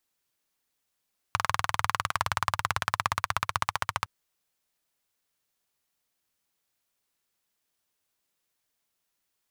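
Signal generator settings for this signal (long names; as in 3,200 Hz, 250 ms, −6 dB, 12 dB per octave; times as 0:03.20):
pulse-train model of a single-cylinder engine, changing speed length 2.71 s, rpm 2,500, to 1,700, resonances 100/1,100 Hz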